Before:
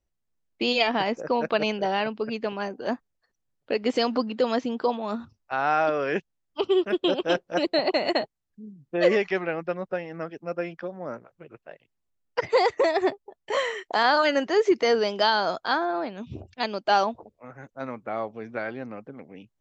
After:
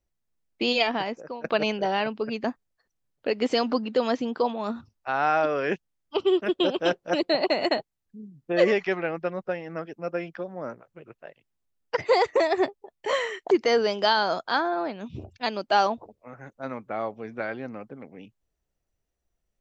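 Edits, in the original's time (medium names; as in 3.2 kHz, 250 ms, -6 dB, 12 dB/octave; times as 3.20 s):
0.76–1.44 s: fade out, to -18 dB
2.44–2.88 s: delete
13.95–14.68 s: delete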